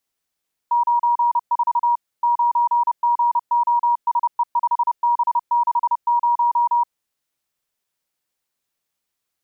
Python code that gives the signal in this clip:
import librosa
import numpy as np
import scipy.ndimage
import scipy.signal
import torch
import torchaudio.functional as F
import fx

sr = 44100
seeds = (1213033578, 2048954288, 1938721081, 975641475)

y = fx.morse(sr, text='94 9GOSE5B60', wpm=30, hz=953.0, level_db=-14.0)